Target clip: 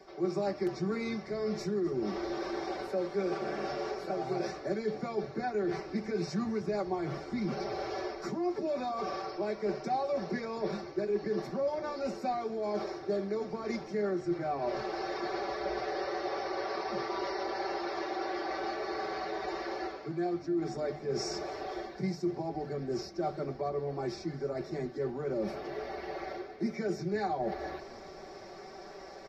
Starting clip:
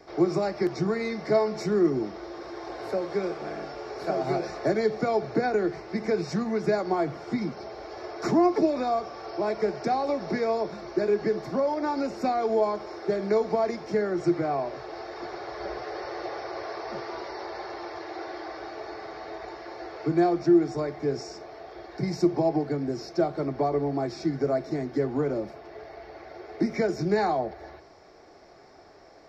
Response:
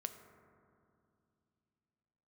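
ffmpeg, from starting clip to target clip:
-filter_complex "[0:a]areverse,acompressor=threshold=-37dB:ratio=6,areverse,bandreject=frequency=50:width_type=h:width=6,bandreject=frequency=100:width_type=h:width=6,bandreject=frequency=150:width_type=h:width=6,aecho=1:1:5.2:0.85,asplit=6[link_01][link_02][link_03][link_04][link_05][link_06];[link_02]adelay=256,afreqshift=-62,volume=-20dB[link_07];[link_03]adelay=512,afreqshift=-124,volume=-24.7dB[link_08];[link_04]adelay=768,afreqshift=-186,volume=-29.5dB[link_09];[link_05]adelay=1024,afreqshift=-248,volume=-34.2dB[link_10];[link_06]adelay=1280,afreqshift=-310,volume=-38.9dB[link_11];[link_01][link_07][link_08][link_09][link_10][link_11]amix=inputs=6:normalize=0,volume=3dB" -ar 44100 -c:a libvorbis -b:a 48k

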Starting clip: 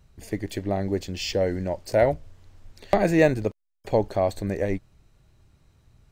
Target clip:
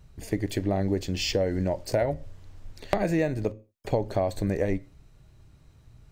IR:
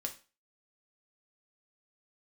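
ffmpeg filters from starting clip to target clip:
-filter_complex "[0:a]asplit=2[link_01][link_02];[1:a]atrim=start_sample=2205,afade=type=out:start_time=0.29:duration=0.01,atrim=end_sample=13230,lowshelf=frequency=470:gain=10.5[link_03];[link_02][link_03]afir=irnorm=-1:irlink=0,volume=-12.5dB[link_04];[link_01][link_04]amix=inputs=2:normalize=0,acompressor=threshold=-21dB:ratio=12"

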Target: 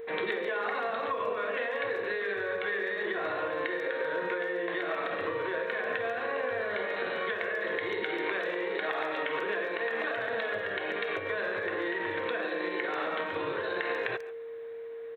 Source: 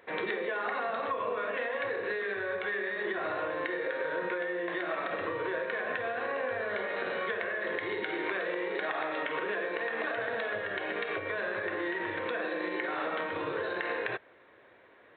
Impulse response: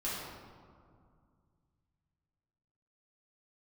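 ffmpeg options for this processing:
-filter_complex "[0:a]aeval=exprs='val(0)+0.0126*sin(2*PI*460*n/s)':channel_layout=same,asplit=2[link_01][link_02];[link_02]adelay=140,highpass=300,lowpass=3400,asoftclip=type=hard:threshold=-25.5dB,volume=-16dB[link_03];[link_01][link_03]amix=inputs=2:normalize=0,crystalizer=i=1.5:c=0"

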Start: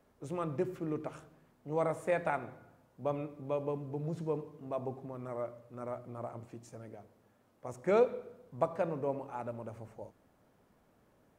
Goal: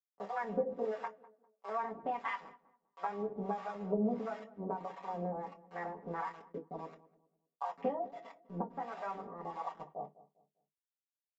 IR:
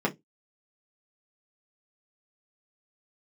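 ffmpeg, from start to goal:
-filter_complex "[0:a]bandreject=frequency=2400:width=22,afwtdn=0.0112,bass=frequency=250:gain=-15,treble=frequency=4000:gain=-15,crystalizer=i=2:c=0,adynamicequalizer=threshold=0.00708:dfrequency=540:dqfactor=0.92:tfrequency=540:tqfactor=0.92:attack=5:release=100:ratio=0.375:range=2.5:mode=cutabove:tftype=bell,acompressor=threshold=-44dB:ratio=12,aresample=11025,aeval=exprs='val(0)*gte(abs(val(0)),0.0015)':channel_layout=same,aresample=44100,acrossover=split=500[link_01][link_02];[link_01]aeval=exprs='val(0)*(1-1/2+1/2*cos(2*PI*1.5*n/s))':channel_layout=same[link_03];[link_02]aeval=exprs='val(0)*(1-1/2-1/2*cos(2*PI*1.5*n/s))':channel_layout=same[link_04];[link_03][link_04]amix=inputs=2:normalize=0,aecho=1:1:6.1:0.33,asetrate=62367,aresample=44100,atempo=0.707107,asplit=2[link_05][link_06];[link_06]adelay=200,lowpass=frequency=830:poles=1,volume=-17dB,asplit=2[link_07][link_08];[link_08]adelay=200,lowpass=frequency=830:poles=1,volume=0.37,asplit=2[link_09][link_10];[link_10]adelay=200,lowpass=frequency=830:poles=1,volume=0.37[link_11];[link_05][link_07][link_09][link_11]amix=inputs=4:normalize=0[link_12];[1:a]atrim=start_sample=2205[link_13];[link_12][link_13]afir=irnorm=-1:irlink=0,volume=3dB"

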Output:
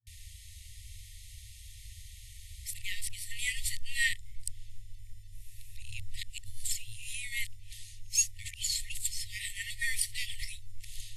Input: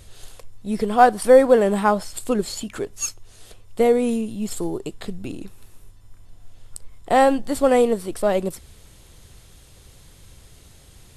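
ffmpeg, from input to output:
ffmpeg -i in.wav -af "areverse,afftfilt=real='re*(1-between(b*sr/4096,110,1800))':imag='im*(1-between(b*sr/4096,110,1800))':win_size=4096:overlap=0.75" out.wav

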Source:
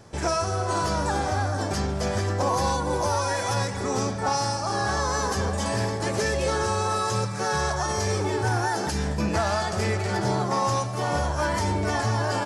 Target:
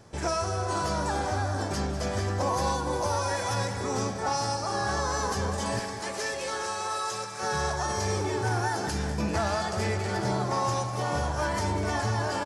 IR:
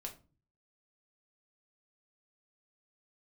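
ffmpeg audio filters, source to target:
-filter_complex "[0:a]asettb=1/sr,asplit=3[link_01][link_02][link_03];[link_01]atrim=end=5.794[link_04];[link_02]atrim=start=5.79:end=7.43,asetpts=PTS-STARTPTS,afade=type=in:duration=0.004:curve=qsin,afade=type=out:start_time=1.636:duration=0.004:curve=qsin,highpass=frequency=820:poles=1[link_05];[link_03]atrim=start=7.426[link_06];[link_04][link_05]acrossfade=duration=0.004:curve1=hsin:curve2=qsin[link_07];[link_07][link_06]acrossfade=duration=0.004:curve1=qsin:curve2=hsin,asplit=2[link_08][link_09];[link_09]aecho=0:1:197|394|591|788|985|1182|1379:0.251|0.151|0.0904|0.0543|0.0326|0.0195|0.0117[link_10];[link_08][link_10]amix=inputs=2:normalize=0,volume=-3.5dB"

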